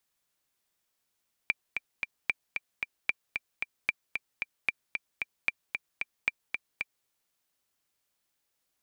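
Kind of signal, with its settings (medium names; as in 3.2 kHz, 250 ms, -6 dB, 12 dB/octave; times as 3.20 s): metronome 226 bpm, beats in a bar 3, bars 7, 2.36 kHz, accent 5.5 dB -12 dBFS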